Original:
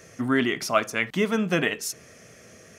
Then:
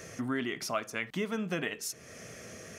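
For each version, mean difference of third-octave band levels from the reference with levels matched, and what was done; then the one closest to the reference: 5.0 dB: compressor 2:1, threshold -44 dBFS, peak gain reduction 15.5 dB; gain +3 dB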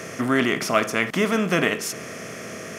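7.5 dB: per-bin compression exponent 0.6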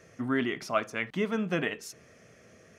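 2.0 dB: high shelf 5200 Hz -11 dB; gain -5.5 dB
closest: third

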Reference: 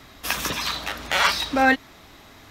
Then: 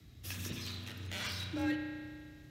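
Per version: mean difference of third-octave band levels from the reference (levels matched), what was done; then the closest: 6.5 dB: passive tone stack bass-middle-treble 10-0-1; frequency shift +37 Hz; in parallel at -6 dB: soft clip -39.5 dBFS, distortion -14 dB; on the sum: spring tank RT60 2 s, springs 33 ms, chirp 30 ms, DRR 3 dB; gain +1.5 dB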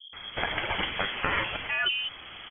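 14.0 dB: in parallel at +2 dB: limiter -14 dBFS, peak gain reduction 8 dB; on the sum: compressor, threshold -22 dBFS, peak gain reduction 12.5 dB; three bands offset in time lows, highs, mids 0.13/0.33 s, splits 160/690 Hz; inverted band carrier 3300 Hz; gain -1.5 dB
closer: first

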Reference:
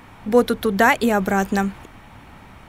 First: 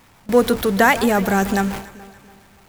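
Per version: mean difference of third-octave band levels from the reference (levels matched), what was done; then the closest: 5.0 dB: zero-crossing step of -27 dBFS; gate with hold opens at -17 dBFS; high shelf 6300 Hz +4 dB; echo with dull and thin repeats by turns 0.143 s, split 1500 Hz, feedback 64%, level -13.5 dB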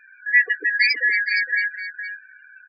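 21.0 dB: four-band scrambler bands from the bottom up 3142; bell 370 Hz +8.5 dB 2.1 oct; loudest bins only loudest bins 8; echo 0.465 s -10 dB; gain -2 dB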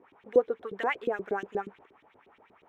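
9.5 dB: median filter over 5 samples; bell 4500 Hz -10.5 dB 0.26 oct; LFO band-pass saw up 8.4 Hz 310–4100 Hz; bell 420 Hz +10 dB 0.58 oct; gain -8.5 dB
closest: first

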